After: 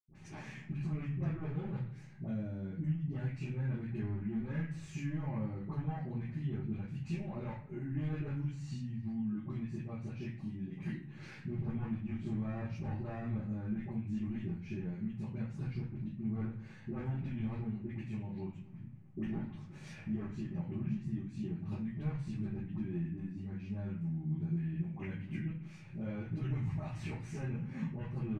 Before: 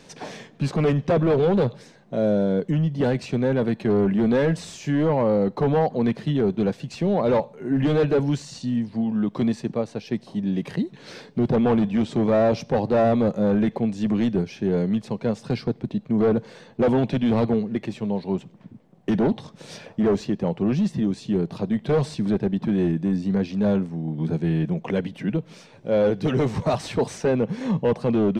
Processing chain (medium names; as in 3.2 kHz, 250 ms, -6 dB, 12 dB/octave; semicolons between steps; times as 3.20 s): peaking EQ 520 Hz -11 dB 2.2 oct; compression 6:1, threshold -35 dBFS, peak gain reduction 12 dB; phase dispersion highs, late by 73 ms, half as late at 820 Hz; speakerphone echo 260 ms, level -22 dB; reverberation RT60 0.50 s, pre-delay 76 ms; trim +9.5 dB